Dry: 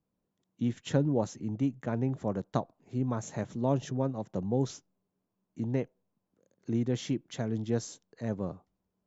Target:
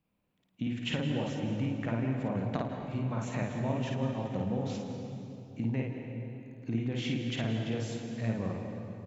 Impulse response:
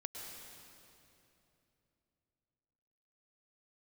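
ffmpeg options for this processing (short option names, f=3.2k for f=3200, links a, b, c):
-filter_complex "[0:a]equalizer=f=400:t=o:w=0.67:g=-5,equalizer=f=2.5k:t=o:w=0.67:g=11,equalizer=f=6.3k:t=o:w=0.67:g=-8,acompressor=threshold=-33dB:ratio=6,asplit=2[a][b];[b]adelay=110.8,volume=-14dB,highshelf=f=4k:g=-2.49[c];[a][c]amix=inputs=2:normalize=0,asplit=2[d][e];[1:a]atrim=start_sample=2205,highshelf=f=5.4k:g=-6.5,adelay=53[f];[e][f]afir=irnorm=-1:irlink=0,volume=3dB[g];[d][g]amix=inputs=2:normalize=0,volume=2dB"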